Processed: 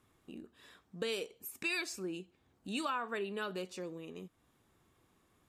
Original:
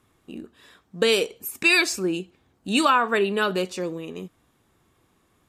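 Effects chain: compression 1.5:1, threshold -46 dBFS, peak gain reduction 11 dB; trim -6.5 dB

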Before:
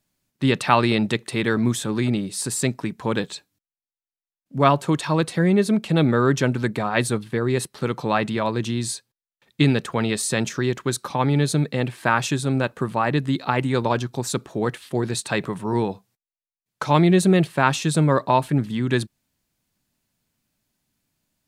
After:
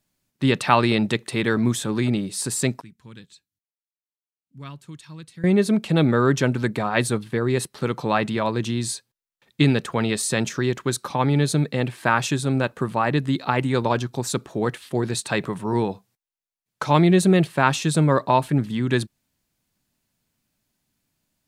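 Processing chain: 2.81–5.44 s: amplifier tone stack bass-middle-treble 6-0-2

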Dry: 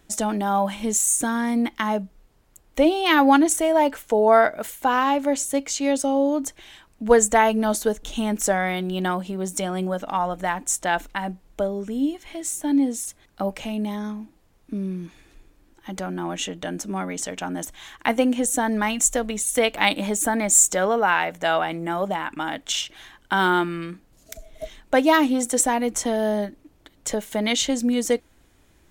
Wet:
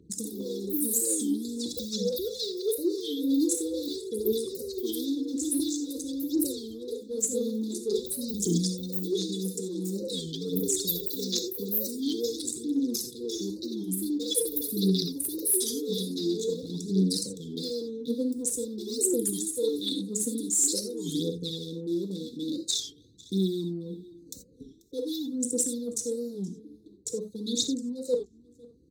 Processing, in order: local Wiener filter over 25 samples; ever faster or slower copies 102 ms, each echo +5 st, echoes 3; brick-wall FIR band-stop 520–3400 Hz; treble shelf 5.8 kHz -7 dB; reverse; compression 6:1, threshold -31 dBFS, peak gain reduction 18.5 dB; reverse; high-pass 77 Hz 24 dB/octave; treble shelf 2.7 kHz +8 dB; on a send: delay 488 ms -23.5 dB; on the sum: gated-style reverb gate 110 ms flat, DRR 5 dB; phaser 0.47 Hz, delay 4.3 ms, feedback 55%; warped record 33 1/3 rpm, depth 160 cents

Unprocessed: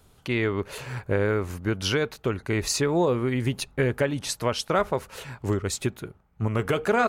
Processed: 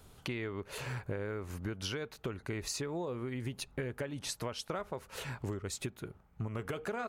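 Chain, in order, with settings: compression 6:1, threshold -36 dBFS, peak gain reduction 17 dB

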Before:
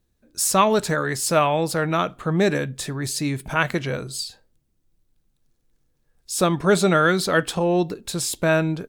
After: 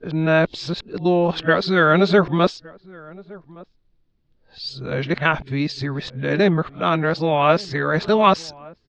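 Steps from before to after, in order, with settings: reverse the whole clip; steep low-pass 4.8 kHz 36 dB/octave; echo from a far wall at 200 m, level -23 dB; trim +2.5 dB

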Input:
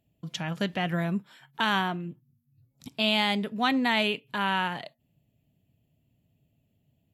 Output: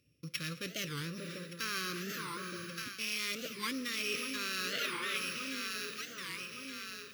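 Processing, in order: sorted samples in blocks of 8 samples; echo whose repeats swap between lows and highs 586 ms, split 1.2 kHz, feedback 67%, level -10.5 dB; reverberation RT60 5.2 s, pre-delay 46 ms, DRR 12 dB; in parallel at -7 dB: wavefolder -28 dBFS; on the sum: high-pass 120 Hz 6 dB/octave; time-frequency box 4.73–5.17 s, 330–4000 Hz +7 dB; elliptic band-stop 550–1200 Hz, stop band 40 dB; reverse; compression 5:1, threshold -36 dBFS, peak gain reduction 13.5 dB; reverse; graphic EQ with 31 bands 200 Hz -11 dB, 1 kHz +10 dB, 2.5 kHz +9 dB, 4 kHz +4 dB; warped record 45 rpm, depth 250 cents

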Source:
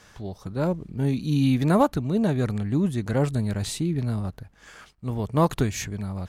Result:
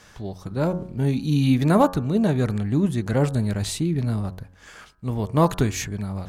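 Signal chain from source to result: de-hum 91.09 Hz, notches 19; trim +2.5 dB

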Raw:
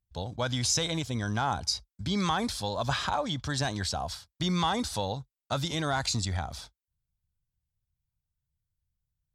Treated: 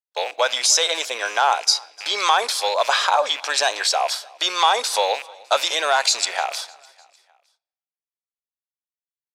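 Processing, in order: rattle on loud lows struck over -39 dBFS, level -33 dBFS; expander -40 dBFS; steep high-pass 470 Hz 36 dB/octave; in parallel at -0.5 dB: gain riding within 4 dB 0.5 s; on the sum: feedback delay 303 ms, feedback 50%, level -24 dB; on a send at -20 dB: reverberation RT60 0.95 s, pre-delay 6 ms; on the sum: trim +6.5 dB

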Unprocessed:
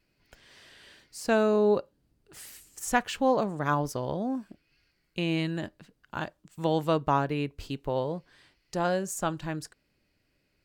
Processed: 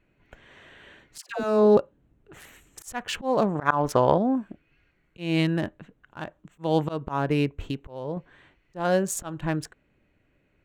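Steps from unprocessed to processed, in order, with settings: local Wiener filter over 9 samples; 3.55–4.18 s: peaking EQ 1.2 kHz +10 dB 2.8 oct; 7.63–8.17 s: compression 6:1, threshold -33 dBFS, peak gain reduction 9 dB; slow attack 226 ms; 1.18–1.77 s: phase dispersion lows, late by 122 ms, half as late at 730 Hz; trim +7 dB

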